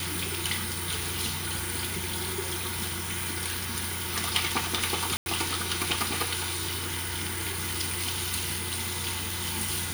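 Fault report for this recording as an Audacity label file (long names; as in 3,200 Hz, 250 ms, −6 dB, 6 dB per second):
5.170000	5.260000	drop-out 91 ms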